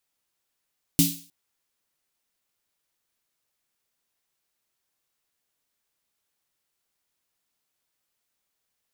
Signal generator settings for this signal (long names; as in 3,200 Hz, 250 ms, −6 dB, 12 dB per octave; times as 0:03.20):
synth snare length 0.31 s, tones 170 Hz, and 280 Hz, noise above 3,000 Hz, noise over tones −1.5 dB, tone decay 0.34 s, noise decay 0.43 s